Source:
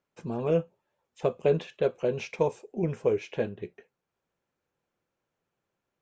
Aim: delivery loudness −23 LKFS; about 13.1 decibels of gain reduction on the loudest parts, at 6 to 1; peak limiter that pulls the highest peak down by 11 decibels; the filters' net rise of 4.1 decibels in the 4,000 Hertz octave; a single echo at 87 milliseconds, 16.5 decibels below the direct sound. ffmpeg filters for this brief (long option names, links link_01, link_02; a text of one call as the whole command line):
ffmpeg -i in.wav -af "equalizer=frequency=4000:width_type=o:gain=5.5,acompressor=threshold=-34dB:ratio=6,alimiter=level_in=8.5dB:limit=-24dB:level=0:latency=1,volume=-8.5dB,aecho=1:1:87:0.15,volume=21dB" out.wav